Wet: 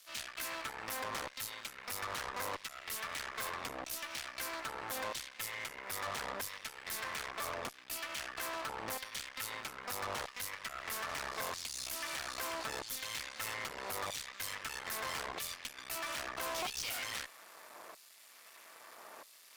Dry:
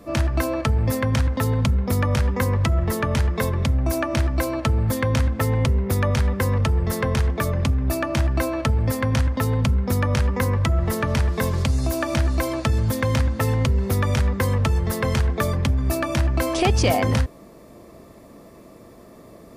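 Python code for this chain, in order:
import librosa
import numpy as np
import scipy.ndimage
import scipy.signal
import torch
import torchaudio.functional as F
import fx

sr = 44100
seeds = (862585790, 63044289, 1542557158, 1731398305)

y = np.maximum(x, 0.0)
y = fx.filter_lfo_highpass(y, sr, shape='saw_down', hz=0.78, low_hz=800.0, high_hz=3900.0, q=0.88)
y = fx.tube_stage(y, sr, drive_db=41.0, bias=0.25)
y = y * librosa.db_to_amplitude(5.5)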